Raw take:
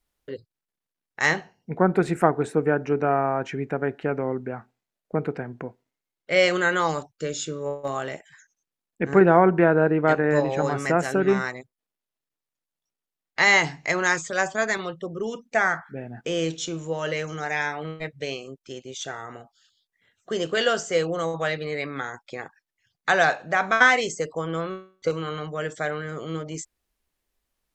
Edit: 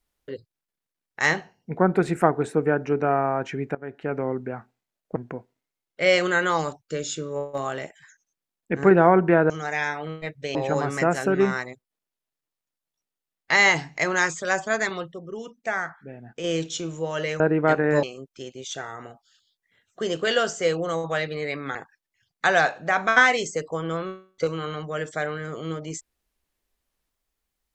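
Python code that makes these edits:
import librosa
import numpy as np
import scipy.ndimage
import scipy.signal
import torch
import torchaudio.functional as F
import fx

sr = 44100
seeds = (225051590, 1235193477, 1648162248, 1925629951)

y = fx.edit(x, sr, fx.fade_in_from(start_s=3.75, length_s=0.46, floor_db=-19.5),
    fx.cut(start_s=5.16, length_s=0.3),
    fx.swap(start_s=9.8, length_s=0.63, other_s=17.28, other_length_s=1.05),
    fx.clip_gain(start_s=15.0, length_s=1.32, db=-5.5),
    fx.cut(start_s=22.05, length_s=0.34), tone=tone)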